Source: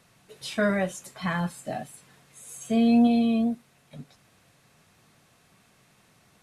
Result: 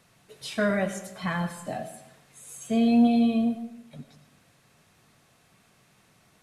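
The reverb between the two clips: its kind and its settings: digital reverb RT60 0.9 s, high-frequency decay 0.6×, pre-delay 55 ms, DRR 10.5 dB; gain -1 dB

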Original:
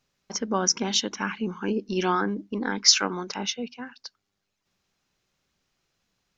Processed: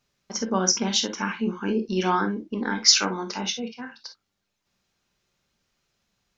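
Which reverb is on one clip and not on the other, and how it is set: non-linear reverb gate 80 ms flat, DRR 5.5 dB

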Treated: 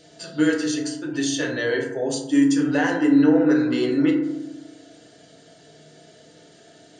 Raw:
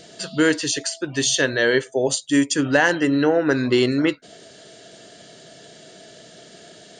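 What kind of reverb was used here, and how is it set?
FDN reverb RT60 0.9 s, low-frequency decay 1.6×, high-frequency decay 0.35×, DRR -2 dB; gain -9.5 dB

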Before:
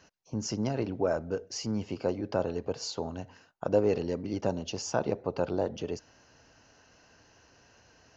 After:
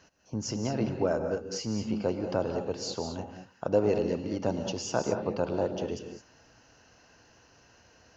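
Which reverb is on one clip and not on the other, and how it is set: non-linear reverb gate 0.24 s rising, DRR 6 dB

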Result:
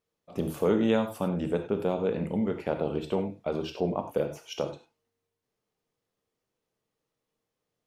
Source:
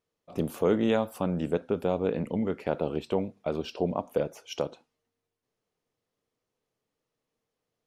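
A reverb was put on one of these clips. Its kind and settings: non-linear reverb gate 0.12 s flat, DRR 6 dB; gain -1 dB

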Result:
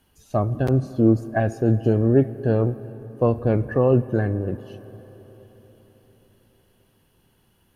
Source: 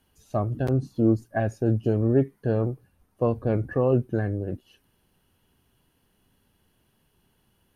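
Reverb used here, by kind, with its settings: digital reverb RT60 4.6 s, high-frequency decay 0.65×, pre-delay 25 ms, DRR 15.5 dB; gain +4 dB

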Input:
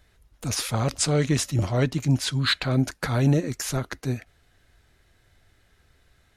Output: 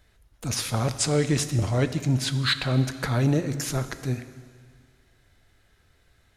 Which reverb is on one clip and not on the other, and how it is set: plate-style reverb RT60 1.9 s, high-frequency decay 1×, DRR 10.5 dB; gain -1 dB

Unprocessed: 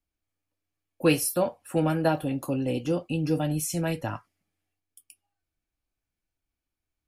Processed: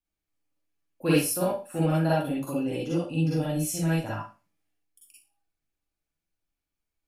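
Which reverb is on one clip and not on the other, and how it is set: Schroeder reverb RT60 0.32 s, DRR -7 dB; gain -8 dB

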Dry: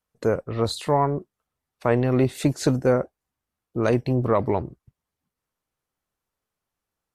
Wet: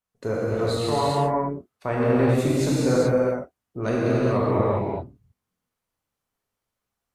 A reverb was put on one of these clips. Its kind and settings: non-linear reverb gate 0.45 s flat, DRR -7.5 dB; gain -7 dB

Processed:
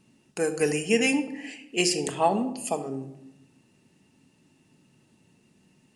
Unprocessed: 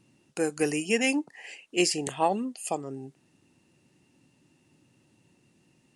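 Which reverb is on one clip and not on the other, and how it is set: shoebox room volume 2500 m³, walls furnished, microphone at 1.5 m; gain +1 dB

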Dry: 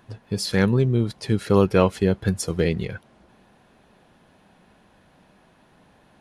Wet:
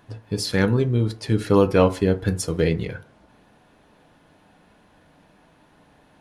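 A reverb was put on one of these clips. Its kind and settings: FDN reverb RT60 0.39 s, low-frequency decay 0.95×, high-frequency decay 0.45×, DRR 7.5 dB

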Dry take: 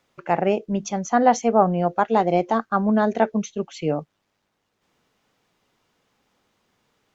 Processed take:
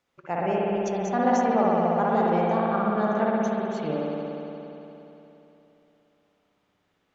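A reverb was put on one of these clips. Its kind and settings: spring tank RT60 3.3 s, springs 58 ms, chirp 30 ms, DRR -5.5 dB; gain -9.5 dB

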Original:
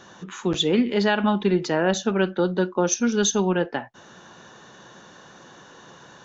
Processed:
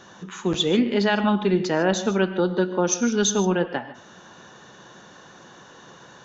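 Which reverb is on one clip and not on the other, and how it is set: non-linear reverb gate 0.17 s rising, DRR 11.5 dB

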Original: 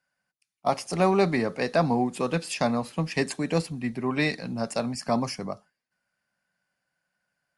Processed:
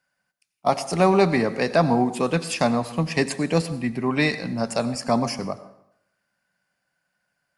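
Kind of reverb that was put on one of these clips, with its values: plate-style reverb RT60 0.77 s, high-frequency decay 0.7×, pre-delay 75 ms, DRR 14 dB; gain +4 dB

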